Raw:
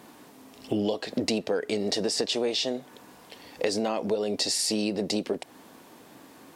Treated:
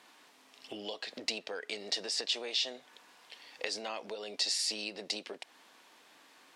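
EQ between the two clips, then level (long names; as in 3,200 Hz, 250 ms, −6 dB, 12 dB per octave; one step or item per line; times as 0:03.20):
resonant band-pass 3,000 Hz, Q 0.66
−2.0 dB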